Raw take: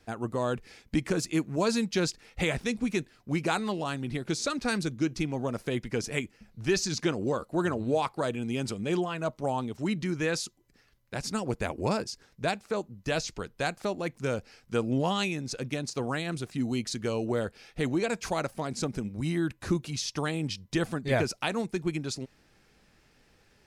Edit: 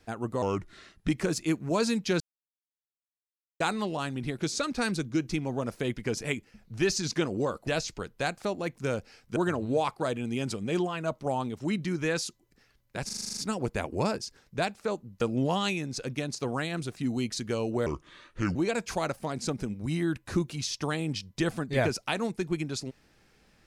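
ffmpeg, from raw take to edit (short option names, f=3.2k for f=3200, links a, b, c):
-filter_complex "[0:a]asplit=18[a][b][c][d][e][f][g][h][i][j][k][l][m][n][o][p][q][r];[a]atrim=end=0.424[s];[b]atrim=start=0.42:end=0.95,asetpts=PTS-STARTPTS,asetrate=35280,aresample=44100,atrim=end_sample=29216,asetpts=PTS-STARTPTS[t];[c]atrim=start=0.946:end=2.07,asetpts=PTS-STARTPTS,afade=t=out:st=1.12:d=0.004:c=hsin[u];[d]atrim=start=2.07:end=3.47,asetpts=PTS-STARTPTS,volume=0[v];[e]atrim=start=3.47:end=7.542,asetpts=PTS-STARTPTS,afade=t=in:d=0.004:c=hsin[w];[f]atrim=start=13.068:end=14.762[x];[g]atrim=start=7.538:end=11.272[y];[h]atrim=start=11.228:end=11.272[z];[i]atrim=start=11.228:end=11.272[aa];[j]atrim=start=11.228:end=11.272[ab];[k]atrim=start=11.228:end=11.272[ac];[l]atrim=start=11.228:end=11.272[ad];[m]atrim=start=11.228:end=11.272[ae];[n]atrim=start=11.228:end=11.272[af];[o]atrim=start=11.228:end=13.072[ag];[p]atrim=start=14.758:end=17.414[ah];[q]atrim=start=17.41:end=17.9,asetpts=PTS-STARTPTS,asetrate=31311,aresample=44100,atrim=end_sample=30435,asetpts=PTS-STARTPTS[ai];[r]atrim=start=17.896[aj];[s][t]acrossfade=d=0.004:c1=hsin:c2=hsin[ak];[u][v][w]concat=n=3:v=0:a=1[al];[ak][al]acrossfade=d=0.004:c1=hsin:c2=hsin[am];[am][x]acrossfade=d=0.004:c1=hsin:c2=hsin[an];[an][y]acrossfade=d=0.004:c1=hsin:c2=hsin[ao];[ao][z]acrossfade=d=0.004:c1=hsin:c2=hsin[ap];[ap][aa]acrossfade=d=0.004:c1=hsin:c2=hsin[aq];[aq][ab]acrossfade=d=0.004:c1=hsin:c2=hsin[ar];[ar][ac]acrossfade=d=0.004:c1=hsin:c2=hsin[as];[as][ad]acrossfade=d=0.004:c1=hsin:c2=hsin[at];[at][ae]acrossfade=d=0.004:c1=hsin:c2=hsin[au];[au][af]acrossfade=d=0.004:c1=hsin:c2=hsin[av];[av][ag]acrossfade=d=0.004:c1=hsin:c2=hsin[aw];[aw][ah]acrossfade=d=0.004:c1=hsin:c2=hsin[ax];[ax][ai]acrossfade=d=0.004:c1=hsin:c2=hsin[ay];[ay][aj]acrossfade=d=0.004:c1=hsin:c2=hsin"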